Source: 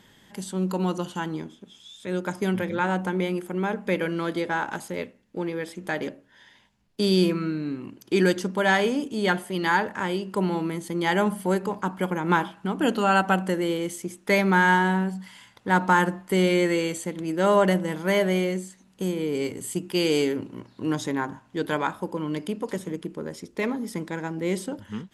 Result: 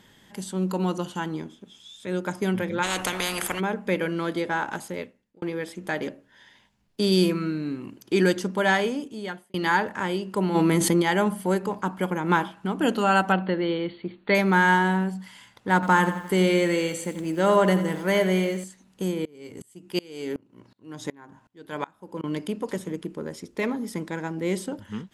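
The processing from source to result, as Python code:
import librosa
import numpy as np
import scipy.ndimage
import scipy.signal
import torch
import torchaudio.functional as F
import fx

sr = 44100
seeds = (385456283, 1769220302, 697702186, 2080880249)

y = fx.spectral_comp(x, sr, ratio=4.0, at=(2.82, 3.59), fade=0.02)
y = fx.high_shelf(y, sr, hz=7000.0, db=6.5, at=(7.12, 7.99))
y = fx.env_flatten(y, sr, amount_pct=70, at=(10.54, 11.01), fade=0.02)
y = fx.brickwall_lowpass(y, sr, high_hz=4600.0, at=(13.32, 14.35))
y = fx.echo_crushed(y, sr, ms=86, feedback_pct=55, bits=8, wet_db=-12, at=(15.74, 18.64))
y = fx.tremolo_decay(y, sr, direction='swelling', hz=2.7, depth_db=29, at=(19.25, 22.24))
y = fx.edit(y, sr, fx.fade_out_span(start_s=4.87, length_s=0.55),
    fx.fade_out_span(start_s=8.66, length_s=0.88), tone=tone)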